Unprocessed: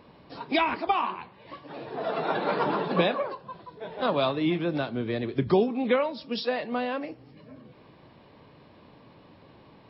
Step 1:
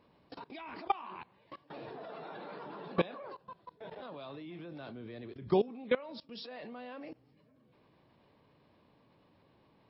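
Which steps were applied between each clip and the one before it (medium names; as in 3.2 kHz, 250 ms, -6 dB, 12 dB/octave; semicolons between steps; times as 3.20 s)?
level held to a coarse grid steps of 21 dB; trim -3.5 dB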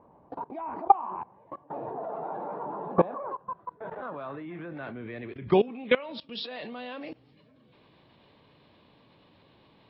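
low-pass sweep 880 Hz -> 3.7 kHz, 2.86–6.55 s; trim +6 dB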